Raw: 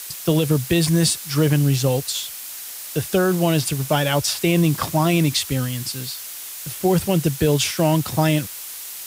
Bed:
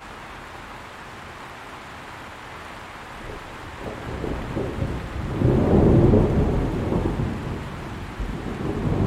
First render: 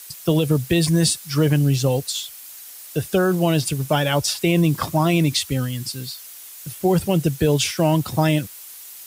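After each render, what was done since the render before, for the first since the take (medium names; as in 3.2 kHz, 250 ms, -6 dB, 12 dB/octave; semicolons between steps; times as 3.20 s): noise reduction 8 dB, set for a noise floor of -34 dBFS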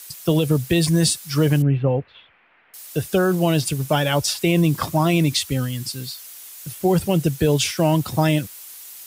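1.62–2.74 s: steep low-pass 2.4 kHz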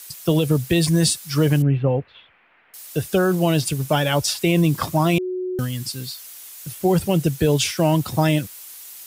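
5.18–5.59 s: bleep 367 Hz -23 dBFS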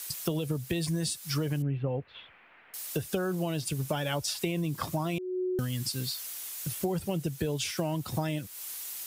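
compression 5:1, threshold -29 dBFS, peak gain reduction 14.5 dB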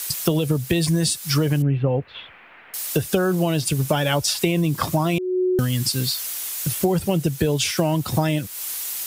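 trim +10.5 dB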